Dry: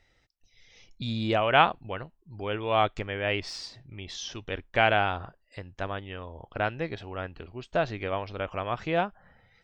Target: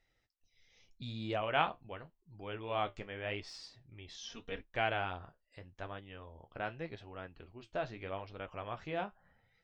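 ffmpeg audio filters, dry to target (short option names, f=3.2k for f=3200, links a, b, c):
-filter_complex "[0:a]asettb=1/sr,asplit=3[a][b][c];[a]atrim=end=4.234[d];[b]atrim=start=4.23:end=4.63,asetpts=PTS-STARTPTS,afade=t=in:d=0.004:c=qsin,afade=t=out:st=0.396:d=0.004:c=qsin,aecho=1:1:4.3:0.91,atrim=end_sample=17640[e];[c]atrim=start=4.626[f];[d][e]acrossfade=d=0.004:c1=hsin:c2=qsin[g];[g][f]acrossfade=d=0.004:c1=qsin:c2=hsin,flanger=delay=6.1:depth=8.8:regen=-52:speed=0.83:shape=sinusoidal,volume=-7dB"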